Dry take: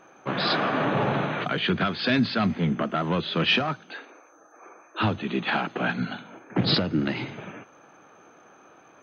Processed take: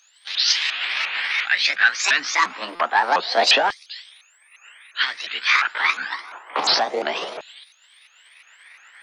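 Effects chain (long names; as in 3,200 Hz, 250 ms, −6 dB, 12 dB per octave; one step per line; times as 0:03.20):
pitch shifter swept by a sawtooth +8.5 semitones, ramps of 351 ms
auto-filter high-pass saw down 0.27 Hz 590–4,300 Hz
buffer that repeats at 0:02.75, samples 256, times 7
level +6.5 dB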